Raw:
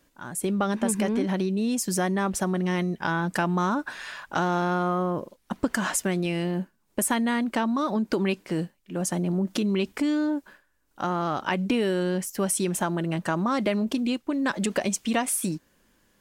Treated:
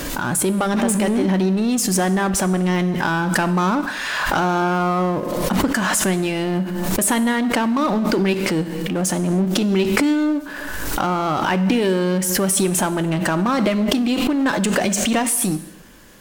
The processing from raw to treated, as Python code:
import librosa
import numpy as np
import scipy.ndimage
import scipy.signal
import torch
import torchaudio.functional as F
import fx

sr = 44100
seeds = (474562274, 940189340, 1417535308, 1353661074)

y = fx.power_curve(x, sr, exponent=0.7)
y = fx.rev_gated(y, sr, seeds[0], gate_ms=340, shape='falling', drr_db=11.0)
y = fx.pre_swell(y, sr, db_per_s=24.0)
y = y * librosa.db_to_amplitude(2.0)